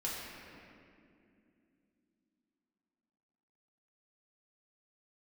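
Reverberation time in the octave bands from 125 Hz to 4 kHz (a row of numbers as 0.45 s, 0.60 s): 3.4 s, 4.3 s, 3.0 s, 2.1 s, 2.2 s, 1.6 s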